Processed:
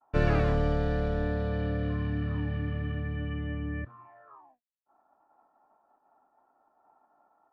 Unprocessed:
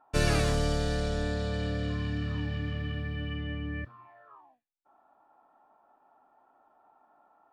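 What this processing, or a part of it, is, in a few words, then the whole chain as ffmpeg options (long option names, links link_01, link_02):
hearing-loss simulation: -af "lowpass=1800,agate=range=-33dB:threshold=-59dB:ratio=3:detection=peak,volume=1.5dB"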